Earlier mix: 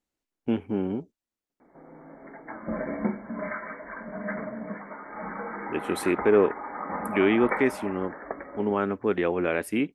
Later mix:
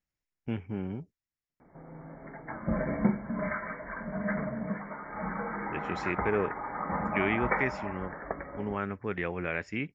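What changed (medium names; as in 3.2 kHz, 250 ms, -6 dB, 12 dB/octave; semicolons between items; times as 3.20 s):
speech: add rippled Chebyshev low-pass 7.2 kHz, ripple 9 dB; master: add resonant low shelf 190 Hz +9.5 dB, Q 1.5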